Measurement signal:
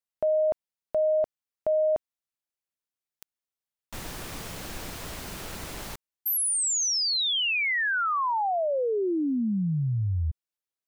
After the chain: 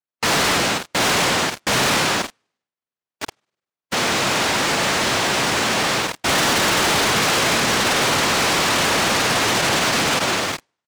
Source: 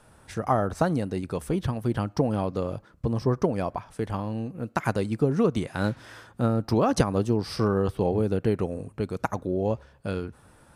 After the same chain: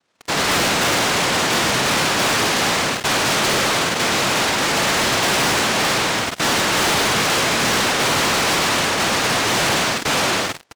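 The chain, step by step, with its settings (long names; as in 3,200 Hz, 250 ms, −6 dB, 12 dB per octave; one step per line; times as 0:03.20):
hearing-aid frequency compression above 1,000 Hz 4 to 1
flutter between parallel walls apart 8.6 metres, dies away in 0.77 s
in parallel at −10.5 dB: fuzz pedal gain 43 dB, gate −43 dBFS
on the sum: cochlear-implant simulation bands 1
low-pass filter 1,700 Hz 6 dB per octave
single-tap delay 83 ms −18 dB
leveller curve on the samples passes 5
brickwall limiter −15 dBFS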